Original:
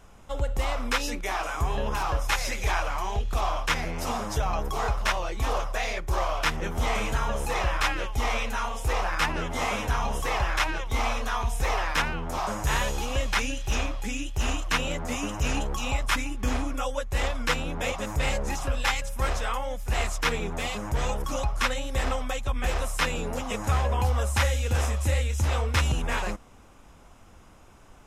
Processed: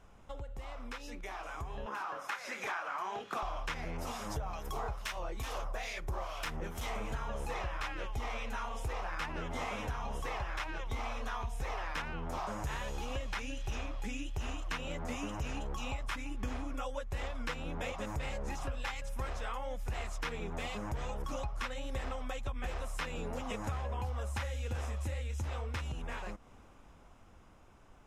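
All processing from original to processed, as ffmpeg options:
ffmpeg -i in.wav -filter_complex "[0:a]asettb=1/sr,asplit=3[link_01][link_02][link_03];[link_01]atrim=end=1.864[link_04];[link_02]atrim=start=1.86:end=3.43,asetpts=PTS-STARTPTS,afade=type=in:duration=0.004:curve=qsin,afade=type=out:start_time=1.566:duration=0.004:curve=qsin,highpass=frequency=190:width=0.5412,highpass=frequency=190:width=1.3066,equalizer=frequency=1400:width=1.4:gain=9,asplit=2[link_05][link_06];[link_06]adelay=32,volume=-12dB[link_07];[link_05][link_07]amix=inputs=2:normalize=0,atrim=end_sample=69237[link_08];[link_03]atrim=start=3.426[link_09];[link_04][link_08]acrossfade=duration=0.004:curve1=hsin:curve2=qsin[link_10];[link_10][link_09]acrossfade=duration=0.004:curve1=qsin:curve2=hsin,asettb=1/sr,asplit=3[link_11][link_12][link_13];[link_11]atrim=end=3.974[link_14];[link_12]atrim=start=3.97:end=7.11,asetpts=PTS-STARTPTS,afade=type=in:duration=0.004:curve=qsin,afade=type=out:start_time=3.136:duration=0.004:curve=qsin,highshelf=frequency=7500:gain=10.5,aeval=exprs='clip(val(0),-1,0.0944)':channel_layout=same,acrossover=split=1600[link_15][link_16];[link_15]aeval=exprs='val(0)*(1-0.7/2+0.7/2*cos(2*PI*2.3*n/s))':channel_layout=same[link_17];[link_16]aeval=exprs='val(0)*(1-0.7/2-0.7/2*cos(2*PI*2.3*n/s))':channel_layout=same[link_18];[link_17][link_18]amix=inputs=2:normalize=0[link_19];[link_13]atrim=start=7.106[link_20];[link_14][link_19]acrossfade=duration=0.004:curve1=hsin:curve2=qsin[link_21];[link_21][link_20]acrossfade=duration=0.004:curve1=qsin:curve2=hsin,acompressor=threshold=-34dB:ratio=6,highshelf=frequency=5100:gain=-8,dynaudnorm=framelen=240:gausssize=17:maxgain=6dB,volume=-6.5dB" out.wav

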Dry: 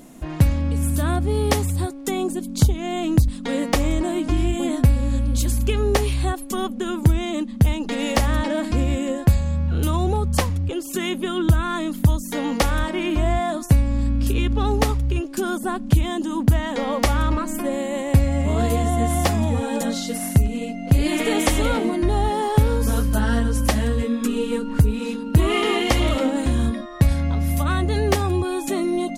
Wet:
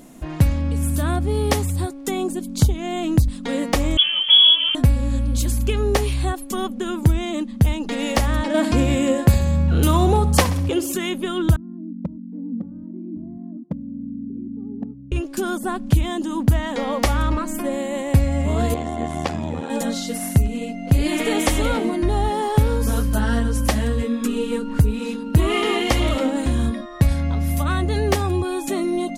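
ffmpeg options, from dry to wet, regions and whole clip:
ffmpeg -i in.wav -filter_complex "[0:a]asettb=1/sr,asplit=3[link_01][link_02][link_03];[link_01]atrim=end=3.974[link_04];[link_02]atrim=start=3.97:end=4.75,asetpts=PTS-STARTPTS,afade=type=in:duration=0.004:curve=qsin,afade=type=out:start_time=0.776:duration=0.004:curve=qsin,lowshelf=frequency=130:gain=10,lowpass=frequency=2900:width_type=q:width=0.5098,lowpass=frequency=2900:width_type=q:width=0.6013,lowpass=frequency=2900:width_type=q:width=0.9,lowpass=frequency=2900:width_type=q:width=2.563,afreqshift=-3400[link_05];[link_03]atrim=start=4.746[link_06];[link_04][link_05]acrossfade=duration=0.004:curve1=hsin:curve2=qsin[link_07];[link_07][link_06]acrossfade=duration=0.004:curve1=qsin:curve2=hsin,asettb=1/sr,asplit=3[link_08][link_09][link_10];[link_08]atrim=end=8.544[link_11];[link_09]atrim=start=8.54:end=10.94,asetpts=PTS-STARTPTS,afade=type=in:duration=0.004:curve=qsin,afade=type=out:start_time=2.396:duration=0.004:curve=qsin,highpass=frequency=110:poles=1,acontrast=53,aecho=1:1:65|130|195|260|325:0.2|0.104|0.054|0.0281|0.0146,atrim=end_sample=105840[link_12];[link_10]atrim=start=10.936[link_13];[link_11][link_12]acrossfade=duration=0.004:curve1=hsin:curve2=qsin[link_14];[link_14][link_13]acrossfade=duration=0.004:curve1=qsin:curve2=hsin,asettb=1/sr,asplit=3[link_15][link_16][link_17];[link_15]atrim=end=11.564[link_18];[link_16]atrim=start=11.56:end=15.12,asetpts=PTS-STARTPTS,afade=type=in:duration=0.004:curve=qsin,afade=type=out:start_time=3.556:duration=0.004:curve=qsin,asuperpass=centerf=210:order=4:qfactor=2.1,asoftclip=type=hard:threshold=-18.5dB[link_19];[link_17]atrim=start=15.116[link_20];[link_18][link_19]acrossfade=duration=0.004:curve1=hsin:curve2=qsin[link_21];[link_21][link_20]acrossfade=duration=0.004:curve1=qsin:curve2=hsin,asettb=1/sr,asplit=3[link_22][link_23][link_24];[link_22]atrim=end=18.744[link_25];[link_23]atrim=start=18.74:end=19.7,asetpts=PTS-STARTPTS,afade=type=in:duration=0.004:curve=qsin,afade=type=out:start_time=0.956:duration=0.004:curve=qsin,tremolo=f=79:d=0.889,highpass=100,lowpass=5700[link_26];[link_24]atrim=start=19.696[link_27];[link_25][link_26]acrossfade=duration=0.004:curve1=hsin:curve2=qsin[link_28];[link_28][link_27]acrossfade=duration=0.004:curve1=qsin:curve2=hsin" out.wav

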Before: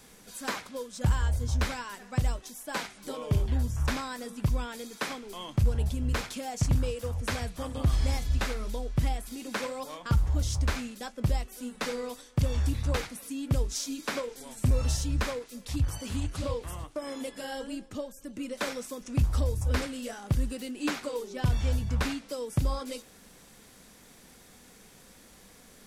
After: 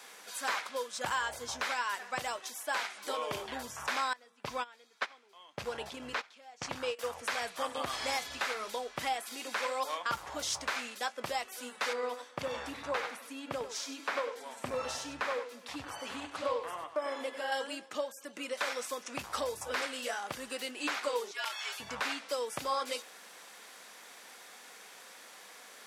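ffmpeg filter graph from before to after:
ffmpeg -i in.wav -filter_complex "[0:a]asettb=1/sr,asplit=3[link_01][link_02][link_03];[link_01]atrim=end=4.134[link_04];[link_02]atrim=start=4.13:end=6.99,asetpts=PTS-STARTPTS,afade=type=in:duration=0.004:curve=qsin,afade=type=out:start_time=2.856:duration=0.004:curve=qsin,acrossover=split=6100[link_05][link_06];[link_06]acompressor=threshold=-59dB:ratio=4:attack=1:release=60[link_07];[link_05][link_07]amix=inputs=2:normalize=0,agate=range=-20dB:threshold=-32dB:ratio=16:release=100:detection=peak[link_08];[link_03]atrim=start=6.986[link_09];[link_04][link_08]acrossfade=duration=0.004:curve1=hsin:curve2=qsin[link_10];[link_10][link_09]acrossfade=duration=0.004:curve1=qsin:curve2=hsin,asettb=1/sr,asplit=3[link_11][link_12][link_13];[link_11]atrim=end=11.934[link_14];[link_12]atrim=start=11.93:end=17.52,asetpts=PTS-STARTPTS,afade=type=in:duration=0.004:curve=qsin,afade=type=out:start_time=5.586:duration=0.004:curve=qsin,highshelf=frequency=3000:gain=-11,aecho=1:1:97:0.299,atrim=end_sample=246519[link_15];[link_13]atrim=start=17.516[link_16];[link_14][link_15]acrossfade=duration=0.004:curve1=hsin:curve2=qsin[link_17];[link_17][link_16]acrossfade=duration=0.004:curve1=qsin:curve2=hsin,asettb=1/sr,asplit=3[link_18][link_19][link_20];[link_18]atrim=end=21.314[link_21];[link_19]atrim=start=21.31:end=21.8,asetpts=PTS-STARTPTS,afade=type=in:duration=0.004:curve=qsin,afade=type=out:start_time=0.486:duration=0.004:curve=qsin,highpass=1300,afreqshift=-100[link_22];[link_20]atrim=start=21.796[link_23];[link_21][link_22]acrossfade=duration=0.004:curve1=hsin:curve2=qsin[link_24];[link_24][link_23]acrossfade=duration=0.004:curve1=qsin:curve2=hsin,highpass=770,highshelf=frequency=4900:gain=-9.5,alimiter=level_in=6dB:limit=-24dB:level=0:latency=1:release=185,volume=-6dB,volume=8.5dB" out.wav

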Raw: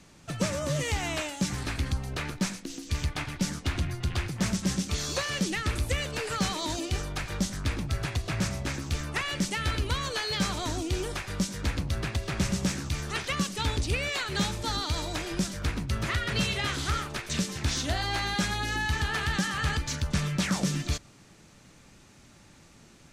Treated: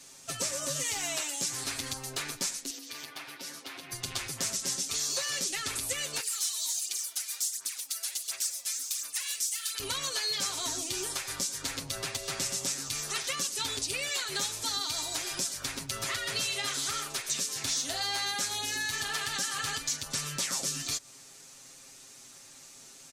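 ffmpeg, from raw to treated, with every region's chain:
ffmpeg -i in.wav -filter_complex "[0:a]asettb=1/sr,asplit=3[link_01][link_02][link_03];[link_01]atrim=end=2.704[link_04];[link_02]atrim=start=2.7:end=3.92,asetpts=PTS-STARTPTS,afade=type=in:duration=0.004:curve=qsin,afade=type=out:start_time=1.216:duration=0.004:curve=qsin,highpass=270,equalizer=frequency=7500:width_type=o:width=1:gain=-12.5,acompressor=threshold=-42dB:ratio=2.5:attack=3.2:release=140:knee=1:detection=peak[link_05];[link_03]atrim=start=3.916[link_06];[link_04][link_05]acrossfade=duration=0.004:curve1=hsin:curve2=qsin[link_07];[link_07][link_06]acrossfade=duration=0.004:curve1=qsin:curve2=hsin,asettb=1/sr,asplit=3[link_08][link_09][link_10];[link_08]atrim=end=6.204[link_11];[link_09]atrim=start=6.2:end=9.8,asetpts=PTS-STARTPTS,afade=type=in:duration=0.004:curve=qsin,afade=type=out:start_time=3.596:duration=0.004:curve=qsin,highpass=170,aderivative,aphaser=in_gain=1:out_gain=1:delay=4.6:decay=0.68:speed=1.4:type=sinusoidal[link_12];[link_10]atrim=start=9.796[link_13];[link_11][link_12]acrossfade=duration=0.004:curve1=hsin:curve2=qsin[link_14];[link_14][link_13]acrossfade=duration=0.004:curve1=qsin:curve2=hsin,bass=frequency=250:gain=-13,treble=frequency=4000:gain=14,aecho=1:1:7.5:0.92,acompressor=threshold=-28dB:ratio=2.5,volume=-3.5dB" out.wav

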